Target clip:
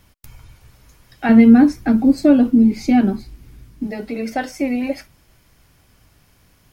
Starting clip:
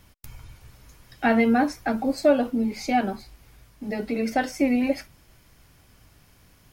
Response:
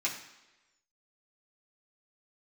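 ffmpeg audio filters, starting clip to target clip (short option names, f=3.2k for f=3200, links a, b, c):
-filter_complex "[0:a]asettb=1/sr,asplit=3[a][b][c];[a]atrim=end=1.294[d];[b]atrim=start=1.29:end=3.87,asetpts=PTS-STARTPTS,afade=t=in:d=0.004:c=qsin,afade=t=out:st=2.576:d=0.004:c=qsin,lowshelf=f=420:t=q:w=1.5:g=9.5[e];[c]atrim=start=3.866[f];[d][e]acrossfade=d=0.004:c1=hsin:c2=qsin[g];[g][f]acrossfade=d=0.004:c1=qsin:c2=hsin,volume=1dB"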